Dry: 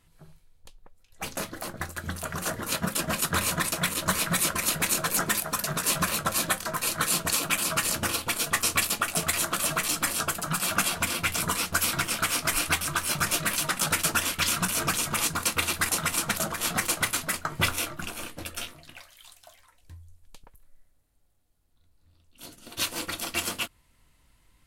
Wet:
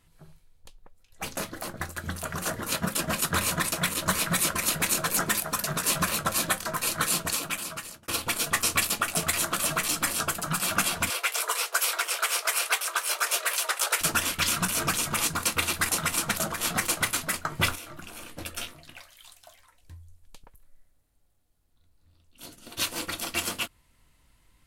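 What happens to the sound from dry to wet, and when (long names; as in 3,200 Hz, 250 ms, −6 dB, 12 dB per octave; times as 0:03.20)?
0:07.06–0:08.08: fade out
0:11.10–0:14.01: Butterworth high-pass 390 Hz 72 dB per octave
0:17.75–0:18.38: downward compressor 12 to 1, threshold −37 dBFS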